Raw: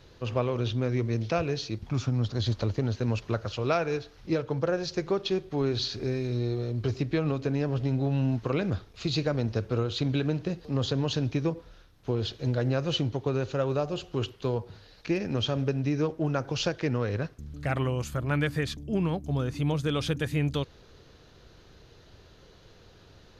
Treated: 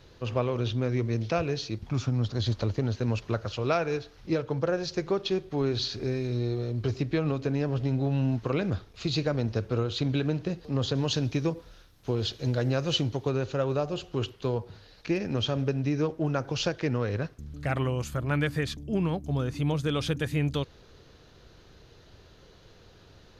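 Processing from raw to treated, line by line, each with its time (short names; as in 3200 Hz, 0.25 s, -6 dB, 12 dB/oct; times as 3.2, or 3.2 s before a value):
10.95–13.32 high shelf 4500 Hz +8 dB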